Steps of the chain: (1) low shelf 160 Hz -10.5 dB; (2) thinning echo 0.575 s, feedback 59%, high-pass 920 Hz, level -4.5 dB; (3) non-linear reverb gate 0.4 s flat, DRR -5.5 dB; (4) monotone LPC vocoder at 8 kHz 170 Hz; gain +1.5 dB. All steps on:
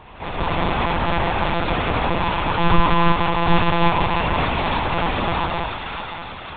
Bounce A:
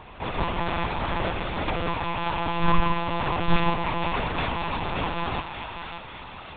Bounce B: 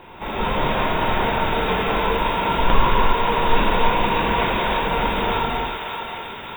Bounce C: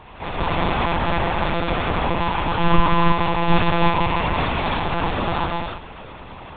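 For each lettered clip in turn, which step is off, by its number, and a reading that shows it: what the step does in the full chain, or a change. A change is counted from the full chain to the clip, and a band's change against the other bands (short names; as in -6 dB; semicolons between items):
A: 3, momentary loudness spread change +1 LU; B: 4, 125 Hz band -5.0 dB; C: 2, momentary loudness spread change +3 LU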